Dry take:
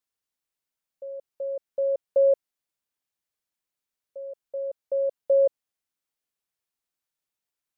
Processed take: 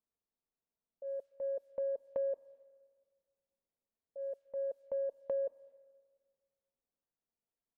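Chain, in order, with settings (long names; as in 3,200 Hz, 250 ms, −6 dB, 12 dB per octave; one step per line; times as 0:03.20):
transient designer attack −7 dB, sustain +1 dB
comb filter 4.4 ms, depth 31%
downward compressor 6 to 1, threshold −35 dBFS, peak gain reduction 14 dB
low-pass that shuts in the quiet parts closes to 680 Hz, open at −38 dBFS
on a send: convolution reverb RT60 1.7 s, pre-delay 113 ms, DRR 22 dB
on the sum: level +1 dB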